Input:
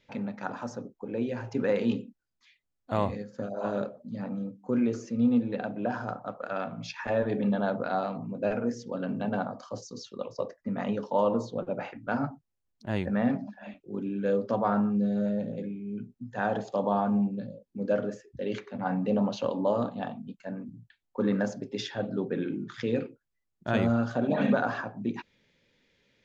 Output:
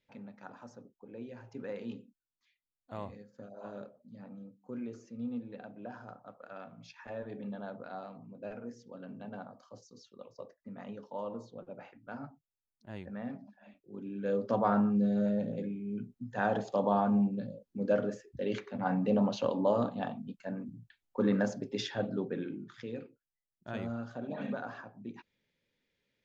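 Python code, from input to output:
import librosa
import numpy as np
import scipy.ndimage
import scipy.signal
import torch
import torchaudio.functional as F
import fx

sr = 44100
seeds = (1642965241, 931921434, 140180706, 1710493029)

y = fx.gain(x, sr, db=fx.line((13.7, -14.0), (14.57, -1.5), (22.01, -1.5), (22.93, -12.5)))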